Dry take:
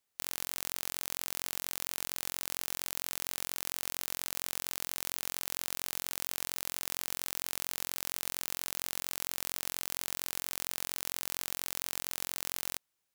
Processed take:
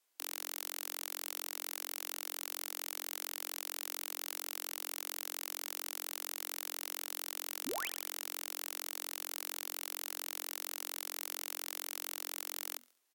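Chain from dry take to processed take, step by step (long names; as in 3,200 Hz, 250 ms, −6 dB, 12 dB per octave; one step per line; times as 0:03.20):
brickwall limiter −15 dBFS, peak gain reduction 6.5 dB
frequency shifter +240 Hz
sound drawn into the spectrogram rise, 0:07.66–0:07.89, 220–3,500 Hz −43 dBFS
on a send: repeating echo 69 ms, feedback 41%, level −21.5 dB
on the sum: level +3.5 dB
Ogg Vorbis 64 kbit/s 48,000 Hz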